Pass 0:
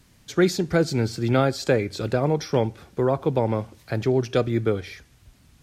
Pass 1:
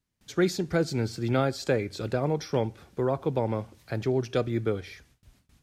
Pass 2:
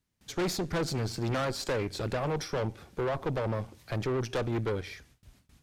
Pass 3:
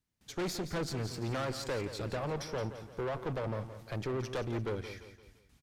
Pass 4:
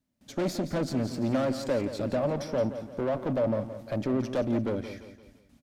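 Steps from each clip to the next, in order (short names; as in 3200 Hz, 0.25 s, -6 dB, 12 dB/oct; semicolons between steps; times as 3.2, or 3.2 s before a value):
gate with hold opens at -45 dBFS; gain -5 dB
tube stage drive 31 dB, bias 0.65; gain +4.5 dB
feedback echo 0.172 s, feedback 43%, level -11.5 dB; gain -5 dB
small resonant body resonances 250/580 Hz, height 15 dB, ringing for 35 ms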